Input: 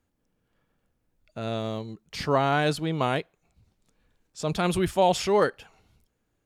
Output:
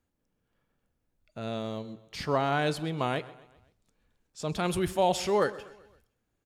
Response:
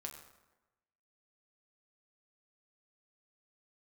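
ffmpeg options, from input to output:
-filter_complex "[0:a]asettb=1/sr,asplit=3[a][b][c];[a]atrim=end=4.674[d];[b]atrim=start=4.67:end=5.48,asetpts=PTS-STARTPTS,afade=t=in:d=0.004:c=qsin,afade=t=out:st=0.806:d=0.004:c=qsin,highshelf=f=9.7k:g=5[e];[c]atrim=start=5.476[f];[d][e]acrossfade=d=0.004:c1=hsin:c2=qsin[g];[g][f]acrossfade=d=0.004:c1=qsin:c2=hsin,aecho=1:1:129|258|387|516:0.1|0.05|0.025|0.0125,asplit=2[h][i];[1:a]atrim=start_sample=2205,afade=t=out:st=0.32:d=0.01,atrim=end_sample=14553[j];[i][j]afir=irnorm=-1:irlink=0,volume=-7.5dB[k];[h][k]amix=inputs=2:normalize=0,volume=-6dB"

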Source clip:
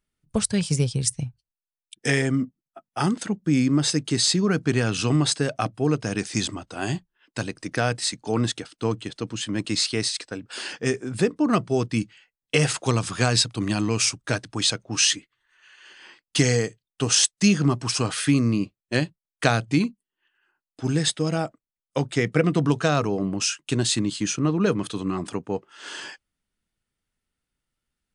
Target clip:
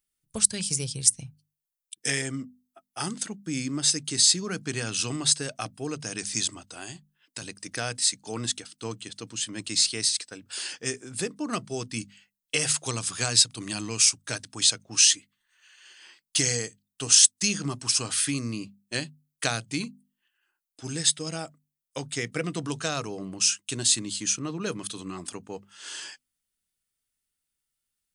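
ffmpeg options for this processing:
-filter_complex "[0:a]asettb=1/sr,asplit=3[a][b][c];[a]atrim=end=6.674[d];[b]atrim=start=6.67:end=7.42,asetpts=PTS-STARTPTS,afade=t=in:d=0.004:c=qsin,afade=t=out:st=0.746:d=0.004:c=qsin,acompressor=threshold=-29dB:ratio=5[e];[c]atrim=start=7.416[f];[d][e]acrossfade=d=0.004:c1=hsin:c2=qsin[g];[g][f]acrossfade=d=0.004:c1=qsin:c2=hsin,bandreject=f=50:t=h:w=6,bandreject=f=100:t=h:w=6,bandreject=f=150:t=h:w=6,bandreject=f=200:t=h:w=6,bandreject=f=250:t=h:w=6,crystalizer=i=5:c=0,volume=-10.5dB"

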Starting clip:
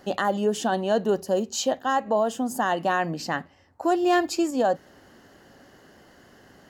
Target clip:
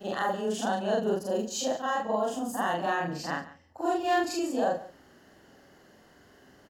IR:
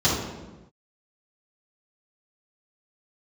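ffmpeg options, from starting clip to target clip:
-filter_complex "[0:a]afftfilt=real='re':imag='-im':win_size=4096:overlap=0.75,asplit=2[a][b];[b]aecho=0:1:141:0.141[c];[a][c]amix=inputs=2:normalize=0"

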